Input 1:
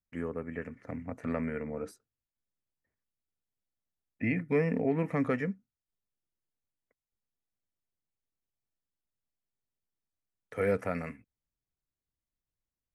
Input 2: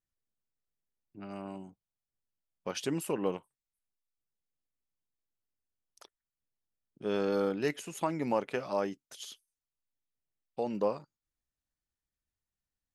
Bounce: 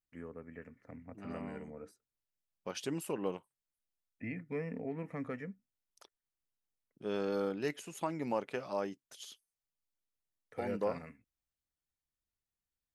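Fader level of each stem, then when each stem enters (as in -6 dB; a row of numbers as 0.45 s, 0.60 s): -11.0 dB, -4.5 dB; 0.00 s, 0.00 s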